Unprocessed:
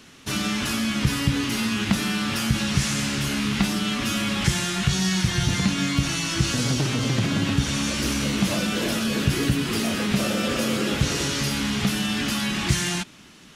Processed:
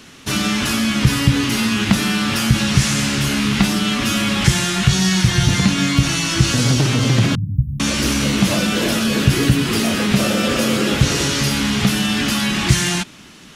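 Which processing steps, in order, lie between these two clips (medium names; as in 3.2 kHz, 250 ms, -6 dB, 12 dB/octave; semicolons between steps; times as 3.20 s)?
7.35–7.80 s: inverse Chebyshev band-stop 770–6100 Hz, stop band 80 dB; dynamic bell 120 Hz, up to +4 dB, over -36 dBFS, Q 5.5; trim +6.5 dB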